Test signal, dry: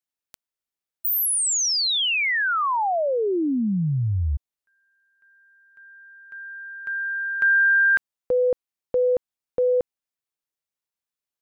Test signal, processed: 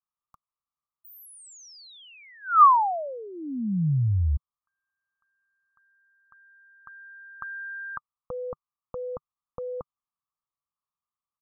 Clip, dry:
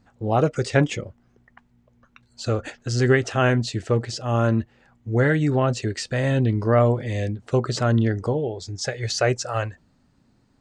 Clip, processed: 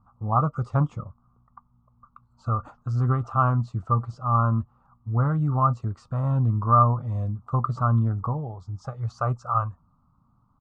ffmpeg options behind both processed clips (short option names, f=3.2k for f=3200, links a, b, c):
-af "firequalizer=gain_entry='entry(150,0);entry(380,-18);entry(1200,12);entry(1700,-28);entry(4500,-26)':delay=0.05:min_phase=1"